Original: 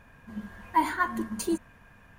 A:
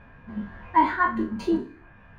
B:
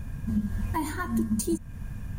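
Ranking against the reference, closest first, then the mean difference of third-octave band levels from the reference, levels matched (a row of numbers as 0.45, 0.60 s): A, B; 4.5, 6.5 dB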